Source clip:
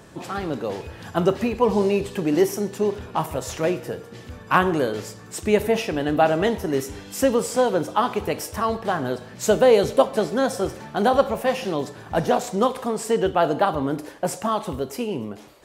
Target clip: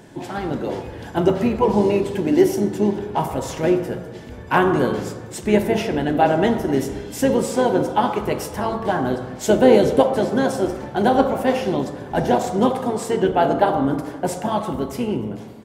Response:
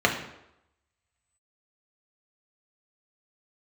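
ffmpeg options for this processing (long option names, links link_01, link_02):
-filter_complex "[0:a]asplit=4[link_01][link_02][link_03][link_04];[link_02]asetrate=22050,aresample=44100,atempo=2,volume=-13dB[link_05];[link_03]asetrate=33038,aresample=44100,atempo=1.33484,volume=-16dB[link_06];[link_04]asetrate=37084,aresample=44100,atempo=1.18921,volume=-15dB[link_07];[link_01][link_05][link_06][link_07]amix=inputs=4:normalize=0,asplit=2[link_08][link_09];[1:a]atrim=start_sample=2205,asetrate=22491,aresample=44100[link_10];[link_09][link_10]afir=irnorm=-1:irlink=0,volume=-21dB[link_11];[link_08][link_11]amix=inputs=2:normalize=0,volume=-2dB"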